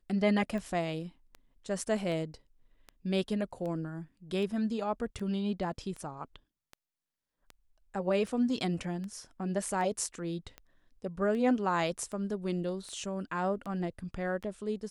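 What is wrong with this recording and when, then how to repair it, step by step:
scratch tick 78 rpm −29 dBFS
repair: click removal

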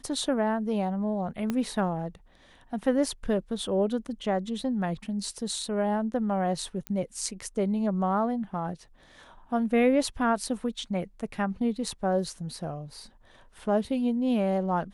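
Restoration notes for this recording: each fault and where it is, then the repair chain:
0:01.50: click −16 dBFS
0:06.87: click −18 dBFS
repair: click removal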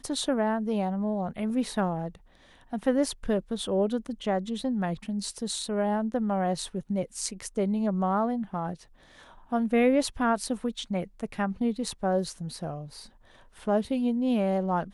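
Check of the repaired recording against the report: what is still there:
0:01.50: click

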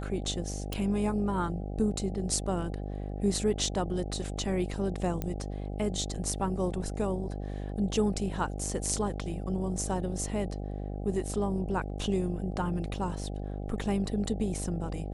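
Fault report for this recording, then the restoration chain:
mains buzz 50 Hz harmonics 16 −36 dBFS
0:00.73: click
0:05.22: click −19 dBFS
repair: click removal
hum removal 50 Hz, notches 16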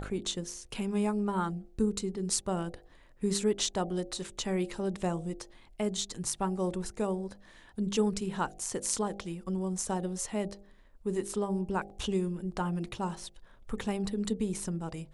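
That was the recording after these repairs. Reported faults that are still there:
none of them is left

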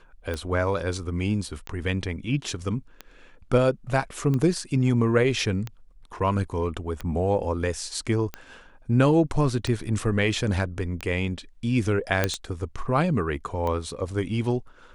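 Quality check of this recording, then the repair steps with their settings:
scratch tick 45 rpm −17 dBFS
0:12.24: click −7 dBFS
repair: click removal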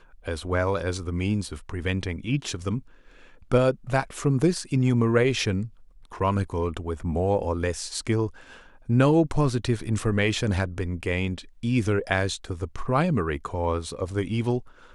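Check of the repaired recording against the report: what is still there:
none of them is left

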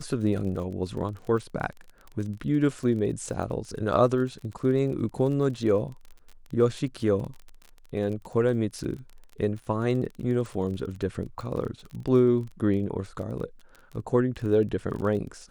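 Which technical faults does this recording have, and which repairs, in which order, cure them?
surface crackle 30 per second −35 dBFS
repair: click removal

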